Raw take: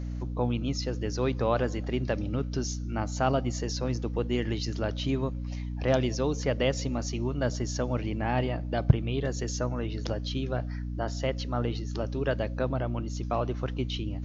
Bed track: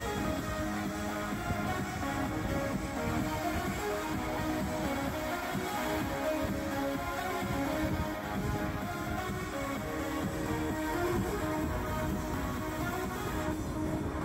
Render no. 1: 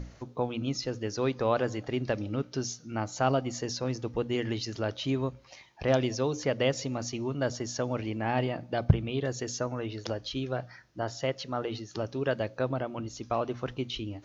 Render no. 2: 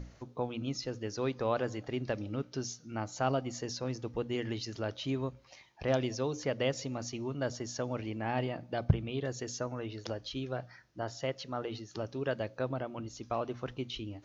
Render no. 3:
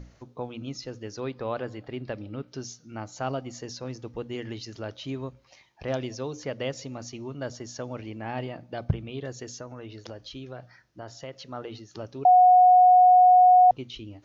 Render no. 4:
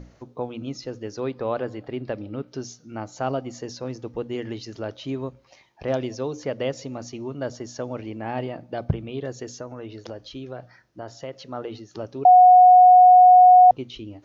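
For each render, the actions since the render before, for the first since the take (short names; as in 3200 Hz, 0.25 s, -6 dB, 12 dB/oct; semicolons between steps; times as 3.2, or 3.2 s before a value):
notches 60/120/180/240/300 Hz
gain -4.5 dB
1.2–2.48 bell 6200 Hz -14 dB 0.37 oct; 9.53–11.33 compressor 2:1, threshold -37 dBFS; 12.25–13.71 bleep 730 Hz -12 dBFS
bell 440 Hz +5.5 dB 2.9 oct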